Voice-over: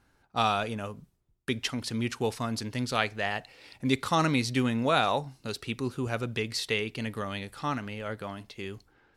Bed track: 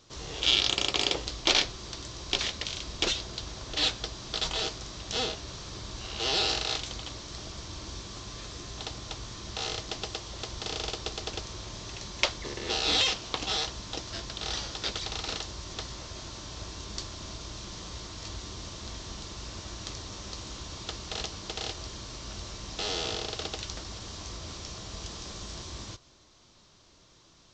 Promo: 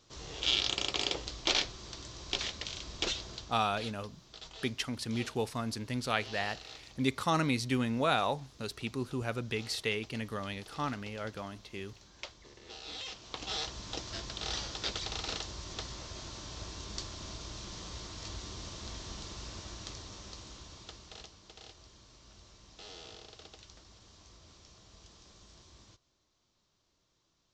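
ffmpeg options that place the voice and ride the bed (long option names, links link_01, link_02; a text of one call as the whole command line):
ffmpeg -i stem1.wav -i stem2.wav -filter_complex "[0:a]adelay=3150,volume=-4dB[link_01];[1:a]volume=9.5dB,afade=type=out:start_time=3.34:duration=0.23:silence=0.237137,afade=type=in:start_time=13.02:duration=0.88:silence=0.177828,afade=type=out:start_time=19.3:duration=2.07:silence=0.199526[link_02];[link_01][link_02]amix=inputs=2:normalize=0" out.wav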